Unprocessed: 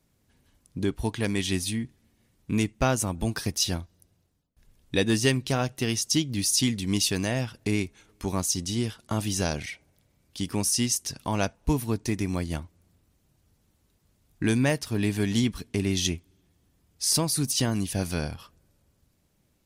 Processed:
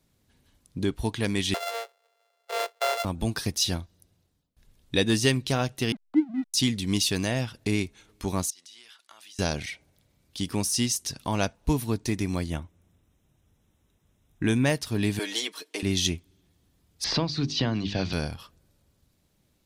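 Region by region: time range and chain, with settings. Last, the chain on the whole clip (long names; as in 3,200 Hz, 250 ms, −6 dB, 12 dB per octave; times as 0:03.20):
0:01.54–0:03.05: samples sorted by size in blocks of 64 samples + Butterworth high-pass 420 Hz 72 dB per octave + high-shelf EQ 4,200 Hz −5 dB
0:05.92–0:06.54: three sine waves on the formant tracks + Chebyshev low-pass filter 2,000 Hz, order 5 + slack as between gear wheels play −37.5 dBFS
0:08.50–0:09.39: high-pass filter 1,400 Hz + high-shelf EQ 4,300 Hz −8 dB + downward compressor 8 to 1, threshold −47 dBFS
0:12.50–0:14.65: Butterworth band-reject 4,500 Hz, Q 3.4 + high-shelf EQ 5,300 Hz −5 dB
0:15.19–0:15.83: high-pass filter 390 Hz 24 dB per octave + comb filter 6.4 ms, depth 72%
0:17.04–0:18.13: inverse Chebyshev low-pass filter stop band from 10,000 Hz, stop band 50 dB + mains-hum notches 50/100/150/200/250/300/350/400 Hz + multiband upward and downward compressor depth 70%
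whole clip: de-essing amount 40%; parametric band 3,800 Hz +4 dB 0.54 octaves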